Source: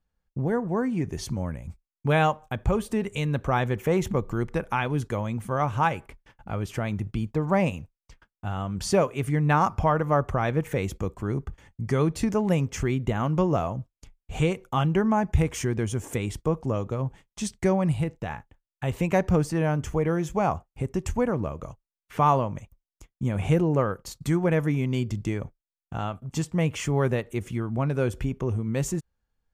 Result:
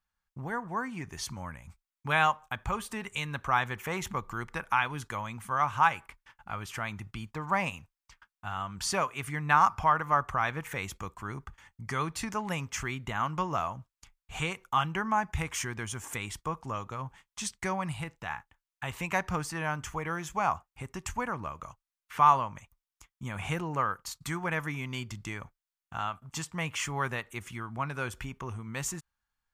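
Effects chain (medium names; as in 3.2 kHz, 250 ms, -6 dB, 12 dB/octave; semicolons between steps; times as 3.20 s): resonant low shelf 730 Hz -11.5 dB, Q 1.5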